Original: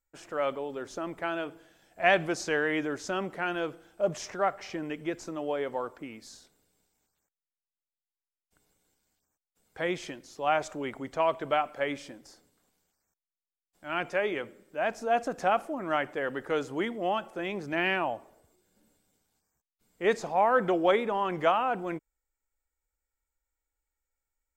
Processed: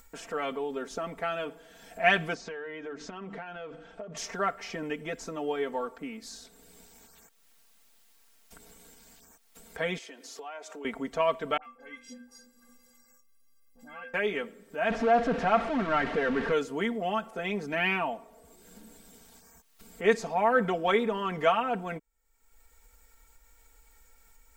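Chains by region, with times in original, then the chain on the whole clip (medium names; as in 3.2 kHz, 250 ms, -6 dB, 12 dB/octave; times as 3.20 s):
2.34–4.17 s: hum notches 50/100/150/200/250/300 Hz + compression 10:1, threshold -38 dBFS + distance through air 130 m
9.98–10.85 s: high-pass 300 Hz 24 dB/octave + compression 2.5:1, threshold -49 dBFS
11.57–14.14 s: inharmonic resonator 240 Hz, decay 0.37 s, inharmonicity 0.03 + phase dispersion highs, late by 60 ms, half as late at 1.1 kHz
14.90–16.52 s: jump at every zero crossing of -28 dBFS + low-pass 2.3 kHz
whole clip: comb 4.4 ms, depth 88%; dynamic bell 700 Hz, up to -4 dB, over -32 dBFS, Q 0.78; upward compressor, threshold -38 dBFS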